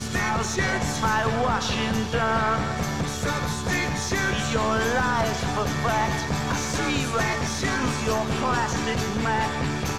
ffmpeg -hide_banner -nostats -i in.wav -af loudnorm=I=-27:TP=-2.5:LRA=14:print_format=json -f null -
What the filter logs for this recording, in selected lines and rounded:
"input_i" : "-24.6",
"input_tp" : "-10.6",
"input_lra" : "0.8",
"input_thresh" : "-34.6",